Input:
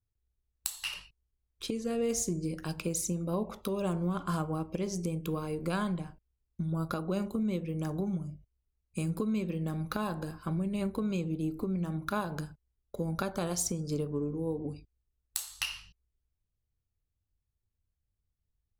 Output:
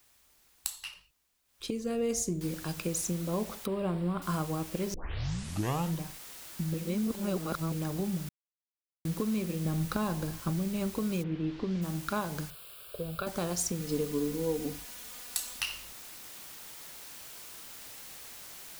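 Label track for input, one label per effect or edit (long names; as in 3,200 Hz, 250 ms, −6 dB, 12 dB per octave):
0.700000	1.690000	duck −11 dB, fades 0.24 s
2.410000	2.410000	noise floor change −65 dB −47 dB
3.660000	4.220000	moving average over 7 samples
4.940000	4.940000	tape start 1.08 s
6.740000	7.720000	reverse
8.290000	9.050000	silence
9.650000	10.510000	low-shelf EQ 210 Hz +6.5 dB
11.220000	11.810000	low-pass filter 2,800 Hz → 5,500 Hz 24 dB per octave
12.500000	13.270000	phaser with its sweep stopped centre 1,300 Hz, stages 8
13.800000	15.610000	comb filter 4.1 ms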